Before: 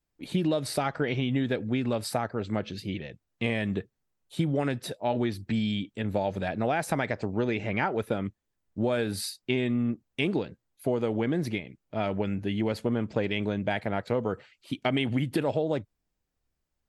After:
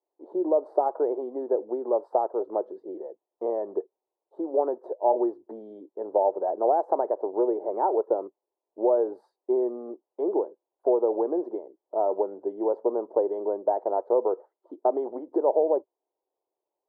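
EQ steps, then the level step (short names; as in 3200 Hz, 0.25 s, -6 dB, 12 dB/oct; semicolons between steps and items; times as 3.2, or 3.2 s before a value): elliptic band-pass 360–960 Hz, stop band 50 dB; +7.0 dB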